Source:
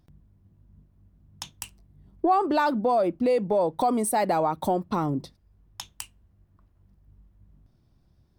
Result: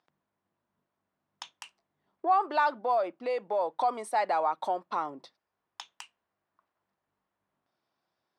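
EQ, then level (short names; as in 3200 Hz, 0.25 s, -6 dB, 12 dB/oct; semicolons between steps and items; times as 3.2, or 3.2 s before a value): HPF 880 Hz 12 dB/oct; LPF 5800 Hz 12 dB/oct; high shelf 2400 Hz -9 dB; +2.5 dB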